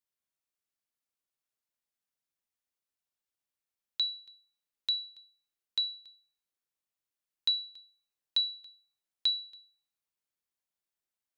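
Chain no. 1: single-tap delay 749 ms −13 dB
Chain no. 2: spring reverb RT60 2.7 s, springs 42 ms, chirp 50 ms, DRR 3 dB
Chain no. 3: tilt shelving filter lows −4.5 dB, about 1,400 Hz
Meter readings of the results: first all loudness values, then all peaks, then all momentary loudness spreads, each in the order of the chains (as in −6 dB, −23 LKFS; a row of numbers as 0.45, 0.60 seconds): −32.5, −34.0, −28.5 LKFS; −19.0, −19.0, −15.5 dBFS; 16, 17, 17 LU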